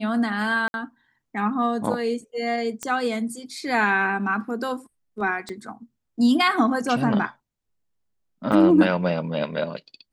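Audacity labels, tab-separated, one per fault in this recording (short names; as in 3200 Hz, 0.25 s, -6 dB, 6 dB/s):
0.680000	0.740000	gap 61 ms
2.830000	2.830000	pop -14 dBFS
5.490000	5.490000	pop -21 dBFS
8.520000	8.520000	gap 3.7 ms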